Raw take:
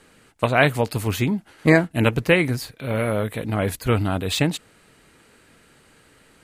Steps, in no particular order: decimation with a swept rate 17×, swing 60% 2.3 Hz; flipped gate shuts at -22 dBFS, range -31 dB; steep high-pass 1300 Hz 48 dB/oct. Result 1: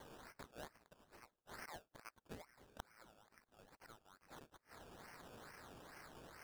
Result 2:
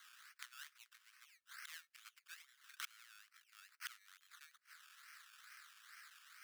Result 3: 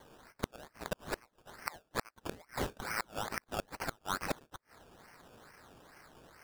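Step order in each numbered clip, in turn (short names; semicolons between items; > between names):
flipped gate > steep high-pass > decimation with a swept rate; decimation with a swept rate > flipped gate > steep high-pass; steep high-pass > decimation with a swept rate > flipped gate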